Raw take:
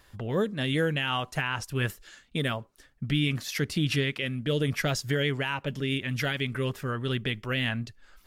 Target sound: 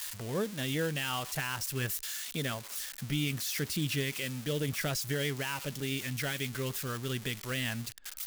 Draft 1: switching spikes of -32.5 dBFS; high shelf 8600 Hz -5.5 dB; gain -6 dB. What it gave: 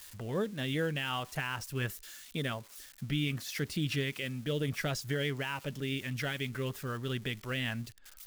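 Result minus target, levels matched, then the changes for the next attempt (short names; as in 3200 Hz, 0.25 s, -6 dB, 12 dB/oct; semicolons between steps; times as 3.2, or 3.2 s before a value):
switching spikes: distortion -11 dB
change: switching spikes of -21 dBFS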